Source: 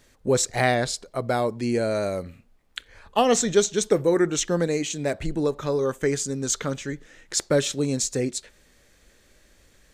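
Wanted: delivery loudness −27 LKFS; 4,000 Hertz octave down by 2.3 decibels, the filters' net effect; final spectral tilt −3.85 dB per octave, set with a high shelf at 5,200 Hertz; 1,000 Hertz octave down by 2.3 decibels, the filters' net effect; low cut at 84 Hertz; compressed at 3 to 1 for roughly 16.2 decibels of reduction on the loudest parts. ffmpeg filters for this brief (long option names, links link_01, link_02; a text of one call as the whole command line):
ffmpeg -i in.wav -af "highpass=84,equalizer=frequency=1000:width_type=o:gain=-3.5,equalizer=frequency=4000:width_type=o:gain=-6.5,highshelf=frequency=5200:gain=7,acompressor=threshold=-37dB:ratio=3,volume=10dB" out.wav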